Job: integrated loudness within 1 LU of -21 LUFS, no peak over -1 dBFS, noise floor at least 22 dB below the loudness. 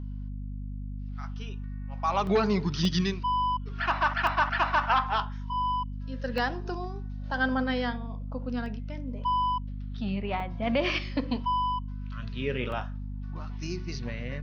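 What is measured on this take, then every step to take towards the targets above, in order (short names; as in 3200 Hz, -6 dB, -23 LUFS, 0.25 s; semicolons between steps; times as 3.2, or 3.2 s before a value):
dropouts 7; longest dropout 1.5 ms; hum 50 Hz; harmonics up to 250 Hz; hum level -33 dBFS; loudness -30.0 LUFS; peak -12.0 dBFS; loudness target -21.0 LUFS
-> interpolate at 2.27/2.85/4.27/6.38/8.66/10.4/12.72, 1.5 ms; de-hum 50 Hz, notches 5; gain +9 dB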